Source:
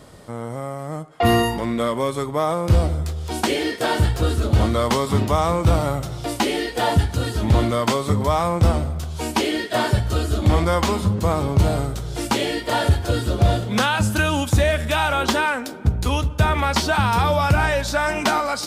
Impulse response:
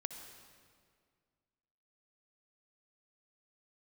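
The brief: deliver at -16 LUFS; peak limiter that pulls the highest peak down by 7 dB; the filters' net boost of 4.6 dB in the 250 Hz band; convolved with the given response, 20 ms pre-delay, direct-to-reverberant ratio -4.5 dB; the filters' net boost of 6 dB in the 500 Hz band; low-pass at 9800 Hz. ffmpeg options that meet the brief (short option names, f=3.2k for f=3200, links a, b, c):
-filter_complex "[0:a]lowpass=9.8k,equalizer=f=250:t=o:g=4,equalizer=f=500:t=o:g=6.5,alimiter=limit=-10dB:level=0:latency=1,asplit=2[a][b];[1:a]atrim=start_sample=2205,adelay=20[c];[b][c]afir=irnorm=-1:irlink=0,volume=6dB[d];[a][d]amix=inputs=2:normalize=0,volume=-1.5dB"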